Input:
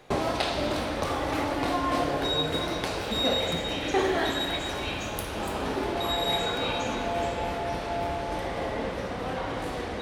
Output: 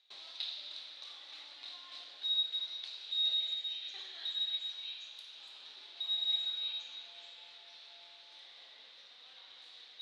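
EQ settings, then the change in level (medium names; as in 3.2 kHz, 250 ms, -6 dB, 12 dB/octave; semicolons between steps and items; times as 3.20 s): ladder band-pass 4.1 kHz, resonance 75%; tilt EQ -4.5 dB/octave; +4.5 dB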